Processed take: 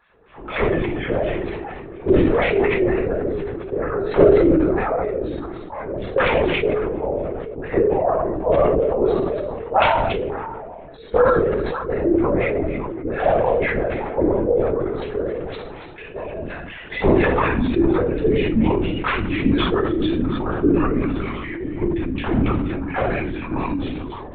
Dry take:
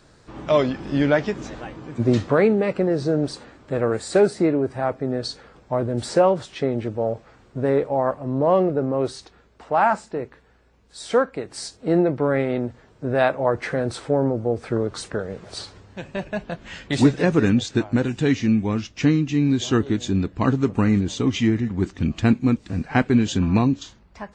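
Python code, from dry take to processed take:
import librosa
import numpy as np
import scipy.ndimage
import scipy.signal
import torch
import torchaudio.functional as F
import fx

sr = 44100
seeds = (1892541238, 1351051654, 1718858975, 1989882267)

p1 = (np.mod(10.0 ** (7.5 / 20.0) * x + 1.0, 2.0) - 1.0) / 10.0 ** (7.5 / 20.0)
p2 = fx.wah_lfo(p1, sr, hz=4.2, low_hz=310.0, high_hz=2600.0, q=2.6)
p3 = p2 + fx.echo_stepped(p2, sr, ms=280, hz=2900.0, octaves=-1.4, feedback_pct=70, wet_db=-11.5, dry=0)
p4 = fx.room_shoebox(p3, sr, seeds[0], volume_m3=870.0, walls='furnished', distance_m=4.1)
p5 = fx.lpc_vocoder(p4, sr, seeds[1], excitation='whisper', order=16)
p6 = fx.sustainer(p5, sr, db_per_s=24.0)
y = p6 * librosa.db_to_amplitude(1.0)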